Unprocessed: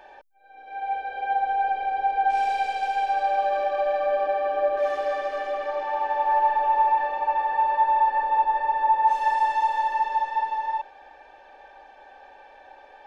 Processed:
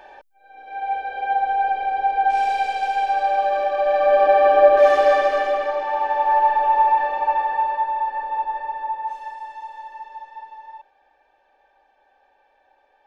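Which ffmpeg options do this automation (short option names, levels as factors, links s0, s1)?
-af "volume=3.55,afade=t=in:st=3.79:d=0.65:silence=0.421697,afade=t=out:st=5.12:d=0.67:silence=0.446684,afade=t=out:st=7.31:d=0.6:silence=0.446684,afade=t=out:st=8.52:d=0.84:silence=0.334965"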